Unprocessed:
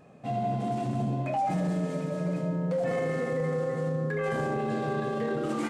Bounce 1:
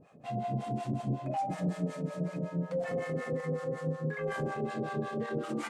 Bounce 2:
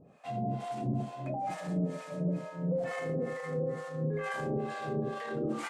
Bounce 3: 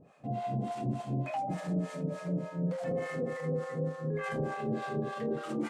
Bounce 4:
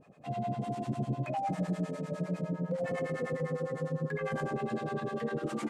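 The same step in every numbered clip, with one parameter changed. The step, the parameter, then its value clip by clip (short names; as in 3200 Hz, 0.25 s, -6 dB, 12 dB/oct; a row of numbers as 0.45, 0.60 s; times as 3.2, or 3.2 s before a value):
harmonic tremolo, rate: 5.4, 2.2, 3.4, 9.9 Hz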